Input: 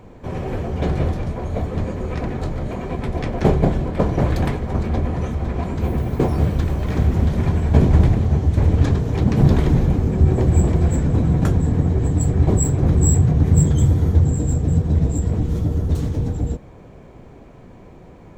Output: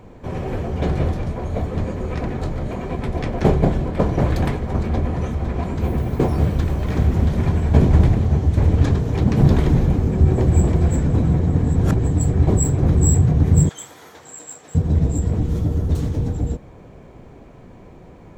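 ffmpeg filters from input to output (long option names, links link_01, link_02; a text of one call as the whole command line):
ffmpeg -i in.wav -filter_complex "[0:a]asettb=1/sr,asplit=3[link_01][link_02][link_03];[link_01]atrim=end=13.694[link_04];[link_02]atrim=start=13.69:end=14.75,asetpts=PTS-STARTPTS,afade=type=in:duration=0.004:curve=qsin,afade=type=out:start_time=1.056:duration=0.004:curve=qsin,highpass=1100[link_05];[link_03]atrim=start=14.746[link_06];[link_04][link_05]acrossfade=duration=0.004:curve1=hsin:curve2=qsin[link_07];[link_07][link_06]acrossfade=duration=0.004:curve1=qsin:curve2=hsin,asplit=3[link_08][link_09][link_10];[link_08]atrim=end=11.402[link_11];[link_09]atrim=start=11.398:end=11.962,asetpts=PTS-STARTPTS,areverse[link_12];[link_10]atrim=start=11.958[link_13];[link_11][link_12]acrossfade=duration=0.004:curve1=hsin:curve2=hsin[link_14];[link_14][link_13]acrossfade=duration=0.004:curve1=hsin:curve2=hsin" out.wav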